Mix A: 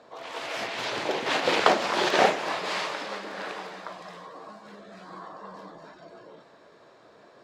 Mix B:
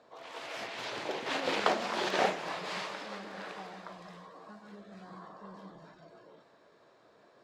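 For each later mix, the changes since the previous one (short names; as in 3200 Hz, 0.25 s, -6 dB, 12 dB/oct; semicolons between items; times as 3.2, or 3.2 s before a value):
background -8.0 dB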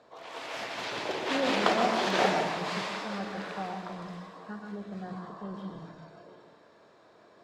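speech +11.5 dB; background: send on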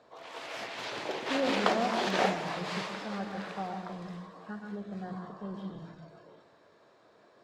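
background: send -11.5 dB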